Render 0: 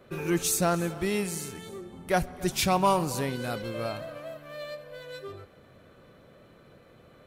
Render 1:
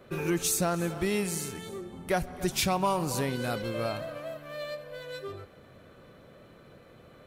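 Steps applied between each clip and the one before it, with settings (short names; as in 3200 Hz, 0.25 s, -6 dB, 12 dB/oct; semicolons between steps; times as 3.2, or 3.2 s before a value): compressor 3:1, threshold -26 dBFS, peak gain reduction 6.5 dB; gain +1.5 dB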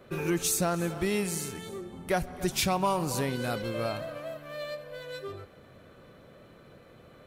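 nothing audible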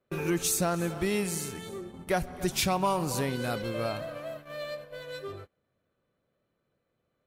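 gate -43 dBFS, range -25 dB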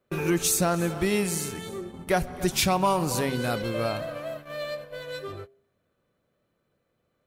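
de-hum 133.5 Hz, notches 5; gain +4 dB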